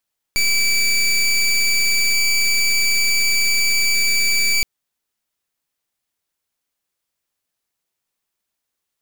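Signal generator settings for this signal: pulse 2.31 kHz, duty 20% -16.5 dBFS 4.27 s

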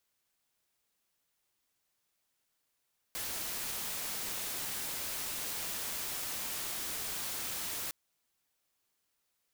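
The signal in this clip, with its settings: noise white, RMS -38 dBFS 4.76 s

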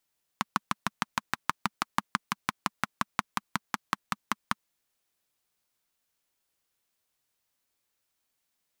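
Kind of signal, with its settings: single-cylinder engine model, changing speed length 4.18 s, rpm 800, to 600, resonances 210/1100 Hz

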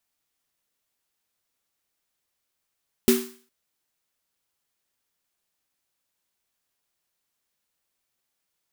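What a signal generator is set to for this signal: snare drum length 0.41 s, tones 240 Hz, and 380 Hz, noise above 920 Hz, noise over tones -7 dB, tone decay 0.39 s, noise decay 0.46 s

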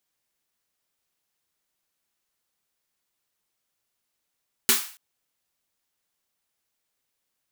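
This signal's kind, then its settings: snare drum length 0.28 s, tones 240 Hz, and 390 Hz, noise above 970 Hz, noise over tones 12 dB, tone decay 0.21 s, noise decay 0.43 s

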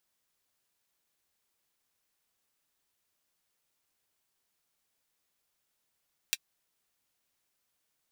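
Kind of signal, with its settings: closed hi-hat, high-pass 2.6 kHz, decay 0.05 s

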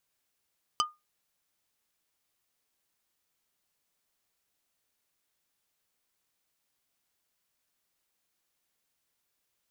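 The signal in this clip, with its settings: wood hit plate, lowest mode 1.22 kHz, decay 0.21 s, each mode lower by 1.5 dB, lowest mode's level -21 dB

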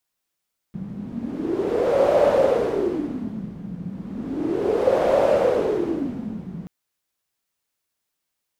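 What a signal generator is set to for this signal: wind-like swept noise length 5.93 s, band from 180 Hz, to 570 Hz, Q 7.3, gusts 2, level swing 16 dB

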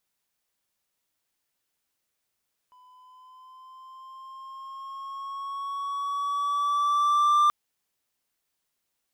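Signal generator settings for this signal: gliding synth tone triangle, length 4.78 s, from 1 kHz, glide +3 st, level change +36 dB, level -14.5 dB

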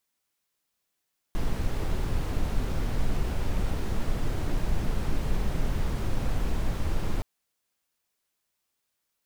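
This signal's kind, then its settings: noise brown, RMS -25 dBFS 5.87 s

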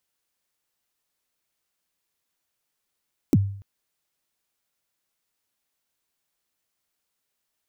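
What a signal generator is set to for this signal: kick drum length 0.29 s, from 350 Hz, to 99 Hz, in 39 ms, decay 0.56 s, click on, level -11 dB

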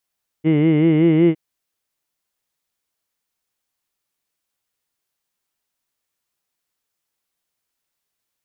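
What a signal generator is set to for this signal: formant vowel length 0.91 s, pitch 152 Hz, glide +1.5 st, F1 360 Hz, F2 2.1 kHz, F3 2.9 kHz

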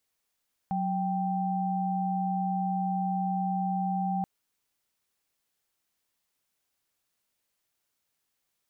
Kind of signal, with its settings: chord F#3/G5 sine, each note -29 dBFS 3.53 s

